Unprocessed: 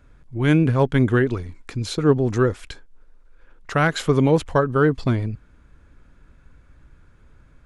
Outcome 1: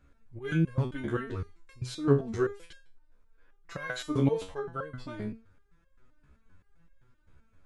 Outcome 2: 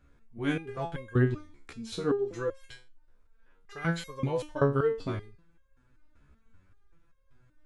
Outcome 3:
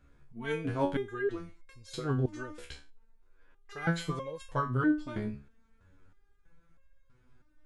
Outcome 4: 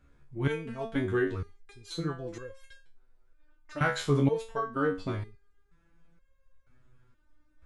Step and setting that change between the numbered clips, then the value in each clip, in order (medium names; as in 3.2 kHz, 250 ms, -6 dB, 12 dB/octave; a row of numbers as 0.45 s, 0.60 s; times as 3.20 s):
resonator arpeggio, rate: 7.7 Hz, 5.2 Hz, 3.1 Hz, 2.1 Hz